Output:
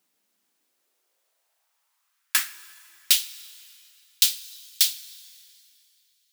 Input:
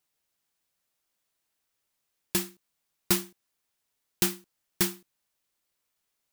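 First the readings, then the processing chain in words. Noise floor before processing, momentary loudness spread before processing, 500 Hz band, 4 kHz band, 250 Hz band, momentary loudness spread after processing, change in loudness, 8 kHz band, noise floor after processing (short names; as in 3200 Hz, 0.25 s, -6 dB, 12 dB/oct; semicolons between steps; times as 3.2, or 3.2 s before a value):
-81 dBFS, 15 LU, under -20 dB, +11.5 dB, under -25 dB, 18 LU, +6.5 dB, +7.5 dB, -74 dBFS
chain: high-pass sweep 220 Hz -> 3700 Hz, 0.4–3.28; plate-style reverb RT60 3 s, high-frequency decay 0.85×, DRR 16 dB; gain +6 dB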